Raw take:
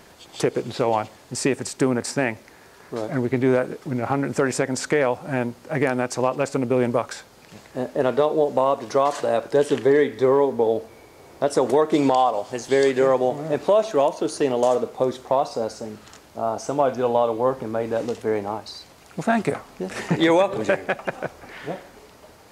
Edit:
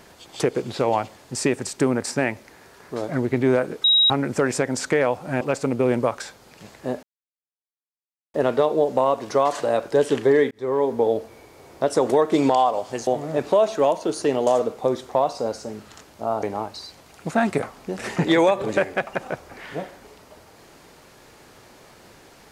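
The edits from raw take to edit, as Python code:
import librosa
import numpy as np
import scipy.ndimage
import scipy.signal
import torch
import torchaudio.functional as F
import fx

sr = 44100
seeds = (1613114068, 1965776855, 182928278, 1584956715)

y = fx.edit(x, sr, fx.bleep(start_s=3.84, length_s=0.26, hz=3820.0, db=-13.0),
    fx.cut(start_s=5.41, length_s=0.91),
    fx.insert_silence(at_s=7.94, length_s=1.31),
    fx.fade_in_span(start_s=10.11, length_s=0.4),
    fx.cut(start_s=12.67, length_s=0.56),
    fx.cut(start_s=16.59, length_s=1.76), tone=tone)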